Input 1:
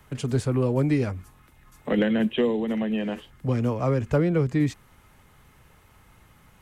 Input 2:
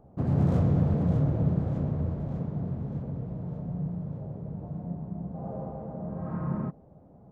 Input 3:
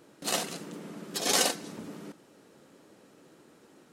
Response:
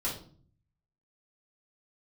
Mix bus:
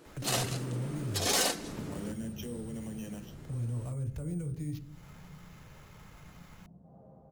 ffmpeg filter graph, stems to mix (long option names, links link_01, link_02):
-filter_complex "[0:a]equalizer=frequency=190:width=0.63:gain=-5.5,acrossover=split=280[link_01][link_02];[link_02]acompressor=threshold=-48dB:ratio=2.5[link_03];[link_01][link_03]amix=inputs=2:normalize=0,acrusher=samples=5:mix=1:aa=0.000001,adelay=50,volume=1.5dB,asplit=2[link_04][link_05];[link_05]volume=-22.5dB[link_06];[1:a]adelay=1500,volume=-19dB[link_07];[2:a]volume=1dB[link_08];[link_04][link_07]amix=inputs=2:normalize=0,acrossover=split=170|3000[link_09][link_10][link_11];[link_10]acompressor=threshold=-53dB:ratio=2[link_12];[link_09][link_12][link_11]amix=inputs=3:normalize=0,alimiter=level_in=7dB:limit=-24dB:level=0:latency=1:release=62,volume=-7dB,volume=0dB[link_13];[3:a]atrim=start_sample=2205[link_14];[link_06][link_14]afir=irnorm=-1:irlink=0[link_15];[link_08][link_13][link_15]amix=inputs=3:normalize=0,asoftclip=type=tanh:threshold=-22dB"